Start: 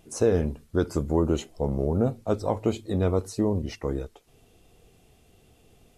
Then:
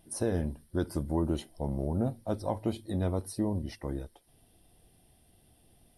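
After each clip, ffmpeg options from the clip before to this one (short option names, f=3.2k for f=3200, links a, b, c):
-af "superequalizer=7b=0.447:10b=0.562:12b=0.562:15b=0.316:16b=2.82,volume=-5dB"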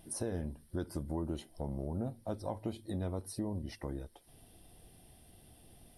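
-af "acompressor=threshold=-47dB:ratio=2,volume=4dB"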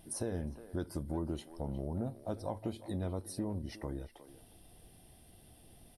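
-filter_complex "[0:a]asplit=2[a][b];[b]adelay=360,highpass=300,lowpass=3.4k,asoftclip=type=hard:threshold=-32.5dB,volume=-13dB[c];[a][c]amix=inputs=2:normalize=0"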